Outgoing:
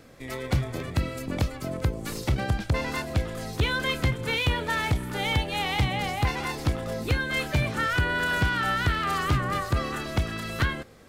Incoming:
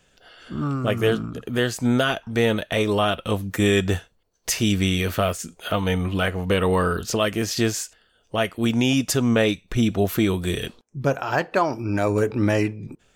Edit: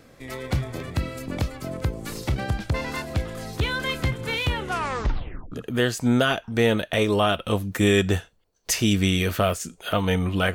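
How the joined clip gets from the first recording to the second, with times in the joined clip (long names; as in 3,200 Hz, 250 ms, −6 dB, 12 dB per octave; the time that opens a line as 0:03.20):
outgoing
0:04.52: tape stop 1.00 s
0:05.52: continue with incoming from 0:01.31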